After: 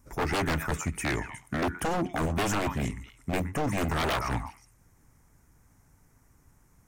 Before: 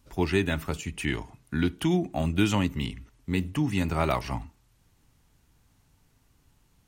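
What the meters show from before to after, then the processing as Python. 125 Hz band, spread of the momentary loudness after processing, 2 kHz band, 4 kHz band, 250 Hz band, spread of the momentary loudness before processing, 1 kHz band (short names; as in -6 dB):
-3.0 dB, 7 LU, +1.0 dB, -1.5 dB, -5.0 dB, 10 LU, +3.0 dB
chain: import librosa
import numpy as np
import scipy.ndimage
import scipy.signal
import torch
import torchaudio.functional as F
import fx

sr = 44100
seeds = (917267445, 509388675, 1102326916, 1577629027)

y = fx.band_shelf(x, sr, hz=3500.0, db=-13.5, octaves=1.0)
y = fx.echo_stepped(y, sr, ms=121, hz=1200.0, octaves=1.4, feedback_pct=70, wet_db=-6.0)
y = 10.0 ** (-25.0 / 20.0) * (np.abs((y / 10.0 ** (-25.0 / 20.0) + 3.0) % 4.0 - 2.0) - 1.0)
y = fx.hpss(y, sr, part='harmonic', gain_db=-3)
y = F.gain(torch.from_numpy(y), 4.5).numpy()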